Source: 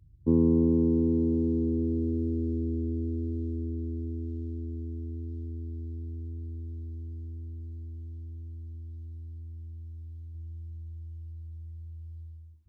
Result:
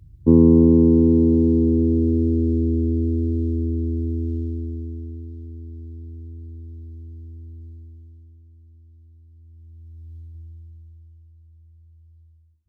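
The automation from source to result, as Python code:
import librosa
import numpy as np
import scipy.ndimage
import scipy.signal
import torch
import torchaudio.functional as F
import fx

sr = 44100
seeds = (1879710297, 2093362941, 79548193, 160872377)

y = fx.gain(x, sr, db=fx.line((4.35, 10.0), (5.36, 1.0), (7.67, 1.0), (8.43, -8.0), (9.29, -8.0), (10.17, 4.0), (11.31, -8.0)))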